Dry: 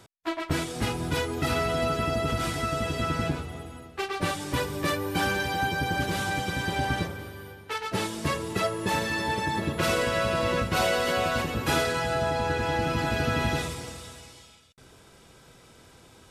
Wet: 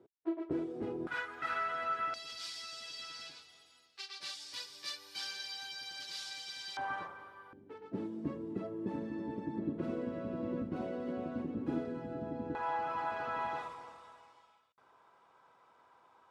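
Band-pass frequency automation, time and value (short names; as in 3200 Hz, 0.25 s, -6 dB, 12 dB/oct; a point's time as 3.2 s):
band-pass, Q 3.4
370 Hz
from 1.07 s 1500 Hz
from 2.14 s 4700 Hz
from 6.77 s 1100 Hz
from 7.53 s 270 Hz
from 12.55 s 1000 Hz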